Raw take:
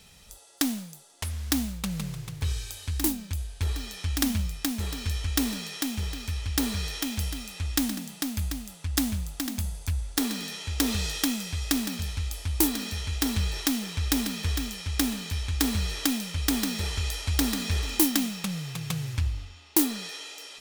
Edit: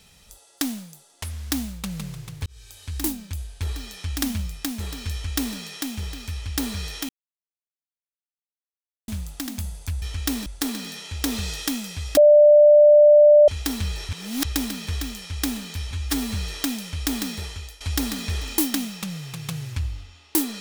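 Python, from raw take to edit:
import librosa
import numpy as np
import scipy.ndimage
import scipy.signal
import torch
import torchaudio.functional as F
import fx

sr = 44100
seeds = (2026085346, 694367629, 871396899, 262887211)

y = fx.edit(x, sr, fx.fade_in_span(start_s=2.46, length_s=0.53),
    fx.duplicate(start_s=5.12, length_s=0.44, to_s=10.02),
    fx.silence(start_s=7.09, length_s=1.99),
    fx.bleep(start_s=11.73, length_s=1.31, hz=593.0, db=-8.5),
    fx.reverse_span(start_s=13.65, length_s=0.36),
    fx.stretch_span(start_s=15.47, length_s=0.29, factor=1.5),
    fx.fade_out_to(start_s=16.69, length_s=0.53, floor_db=-17.0), tone=tone)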